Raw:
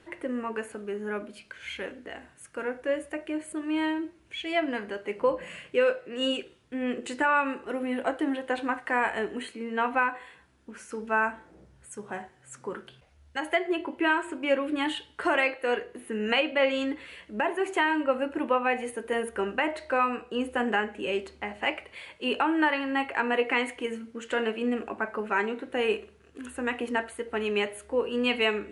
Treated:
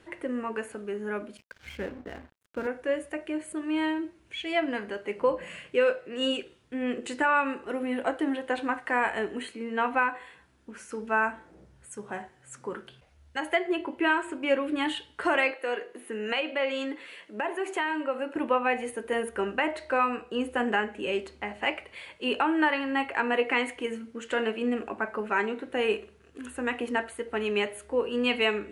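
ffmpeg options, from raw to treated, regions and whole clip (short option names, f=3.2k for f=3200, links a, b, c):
-filter_complex "[0:a]asettb=1/sr,asplit=3[a][b][c];[a]atrim=end=1.374[d];[b]atrim=start=1.37:end=2.67,asetpts=PTS-STARTPTS,afade=t=in:d=0.004:c=qsin,afade=t=out:st=1.296:d=0.004:c=qsin,highpass=57,aemphasis=mode=reproduction:type=riaa,aeval=exprs='sgn(val(0))*max(abs(val(0))-0.00422,0)':c=same[e];[c]atrim=start=2.666[f];[d][e]acrossfade=d=0.004:c1=hsin:c2=qsin[g];[g][f]acrossfade=d=0.004:c1=qsin:c2=hsin,asettb=1/sr,asplit=3[h][i][j];[h]atrim=end=15.514[k];[i]atrim=start=15.51:end=18.36,asetpts=PTS-STARTPTS,afade=t=in:d=0.004:c=qsin,afade=t=out:st=2.846:d=0.004:c=qsin,highpass=270,acompressor=threshold=-30dB:ratio=1.5:attack=3.2:release=140:knee=1:detection=peak[l];[j]atrim=start=18.356[m];[k][l]acrossfade=d=0.004:c1=hsin:c2=qsin[n];[n][m]acrossfade=d=0.004:c1=qsin:c2=hsin"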